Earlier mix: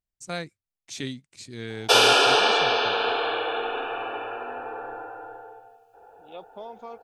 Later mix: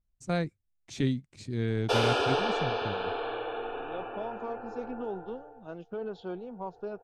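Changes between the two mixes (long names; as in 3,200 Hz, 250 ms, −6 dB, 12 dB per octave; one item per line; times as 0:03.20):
second voice: entry −2.40 s
background −9.0 dB
master: add spectral tilt −3 dB per octave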